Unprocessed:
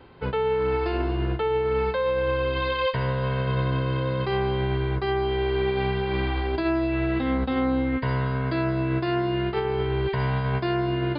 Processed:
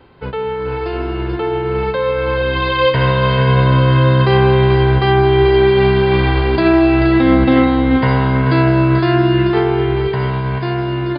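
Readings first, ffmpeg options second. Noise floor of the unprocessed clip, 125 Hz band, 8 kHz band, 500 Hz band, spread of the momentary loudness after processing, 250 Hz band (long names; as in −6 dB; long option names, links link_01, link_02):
−29 dBFS, +12.5 dB, can't be measured, +10.5 dB, 9 LU, +12.5 dB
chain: -filter_complex "[0:a]asplit=2[link_01][link_02];[link_02]aecho=0:1:230|436|473:0.15|0.398|0.316[link_03];[link_01][link_03]amix=inputs=2:normalize=0,dynaudnorm=framelen=280:gausssize=17:maxgain=9dB,asplit=2[link_04][link_05];[link_05]aecho=0:1:158:0.266[link_06];[link_04][link_06]amix=inputs=2:normalize=0,volume=3dB"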